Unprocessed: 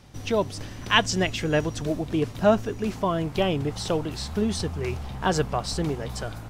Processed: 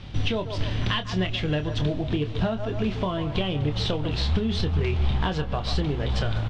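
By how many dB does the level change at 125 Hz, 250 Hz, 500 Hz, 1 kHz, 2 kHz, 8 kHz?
+5.0 dB, -0.5 dB, -4.0 dB, -5.0 dB, -4.0 dB, -12.0 dB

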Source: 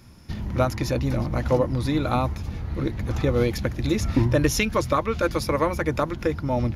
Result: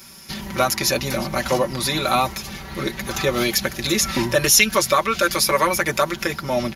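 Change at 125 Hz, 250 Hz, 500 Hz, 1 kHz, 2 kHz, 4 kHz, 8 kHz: -6.0 dB, -1.0 dB, +2.5 dB, +6.5 dB, +9.5 dB, +13.5 dB, +15.5 dB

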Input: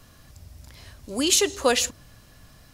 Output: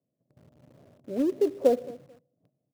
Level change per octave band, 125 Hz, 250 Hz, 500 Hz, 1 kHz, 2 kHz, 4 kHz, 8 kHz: no reading, 0.0 dB, +0.5 dB, -8.5 dB, under -20 dB, under -25 dB, under -30 dB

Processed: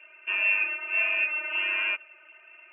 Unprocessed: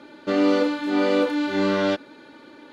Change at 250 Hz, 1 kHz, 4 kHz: under -30 dB, -12.5 dB, -2.5 dB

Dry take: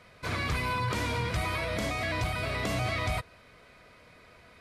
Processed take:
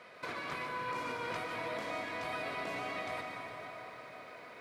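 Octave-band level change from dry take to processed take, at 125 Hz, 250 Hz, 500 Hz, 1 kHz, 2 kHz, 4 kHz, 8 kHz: -21.0 dB, -9.5 dB, -5.0 dB, -4.5 dB, -6.5 dB, -9.5 dB, -13.0 dB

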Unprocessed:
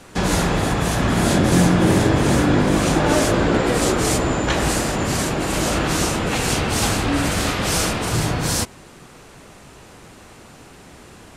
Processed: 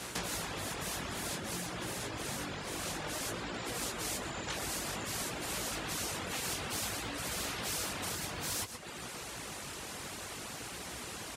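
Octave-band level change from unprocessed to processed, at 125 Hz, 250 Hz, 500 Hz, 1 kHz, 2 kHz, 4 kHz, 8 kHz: -24.5 dB, -24.5 dB, -21.5 dB, -18.0 dB, -15.5 dB, -13.0 dB, -12.5 dB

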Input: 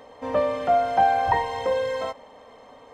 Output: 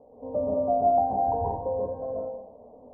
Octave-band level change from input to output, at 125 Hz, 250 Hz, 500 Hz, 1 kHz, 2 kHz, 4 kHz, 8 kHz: +1.5 dB, +2.0 dB, -2.0 dB, -4.5 dB, under -35 dB, under -40 dB, no reading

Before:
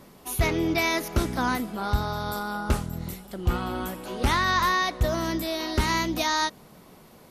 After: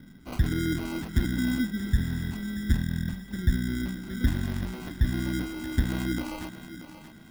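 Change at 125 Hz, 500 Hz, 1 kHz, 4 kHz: +2.0 dB, -10.5 dB, -18.5 dB, -10.0 dB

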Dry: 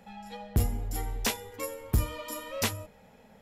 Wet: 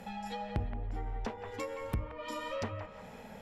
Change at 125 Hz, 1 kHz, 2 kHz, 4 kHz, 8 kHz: -7.5 dB, -0.5 dB, -6.5 dB, -11.5 dB, -19.5 dB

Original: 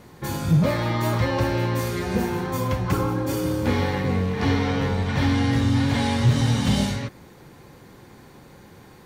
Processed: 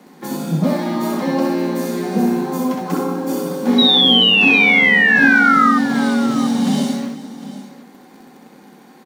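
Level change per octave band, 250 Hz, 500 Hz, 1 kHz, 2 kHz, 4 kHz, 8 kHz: +7.5 dB, +4.5 dB, +9.0 dB, +17.5 dB, +17.5 dB, +2.5 dB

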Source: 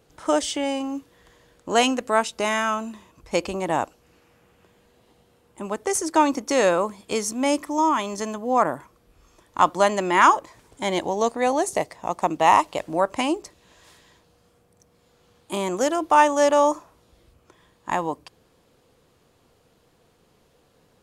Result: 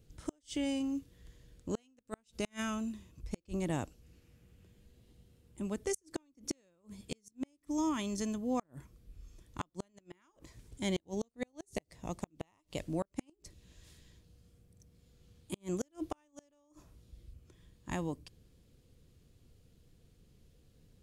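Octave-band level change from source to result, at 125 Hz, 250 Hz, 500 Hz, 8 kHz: -4.0 dB, -10.5 dB, -19.0 dB, -15.5 dB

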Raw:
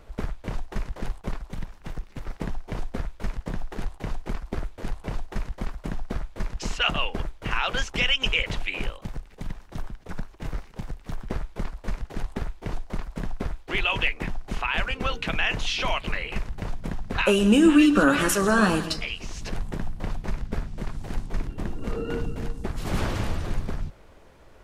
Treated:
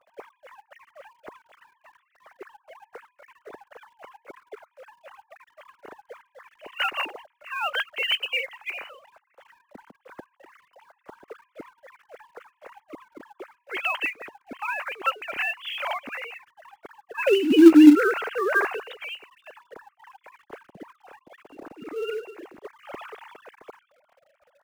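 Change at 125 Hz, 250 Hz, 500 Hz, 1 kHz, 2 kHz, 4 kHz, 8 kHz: under -25 dB, +3.0 dB, +1.5 dB, -1.5 dB, -1.0 dB, -3.5 dB, under -10 dB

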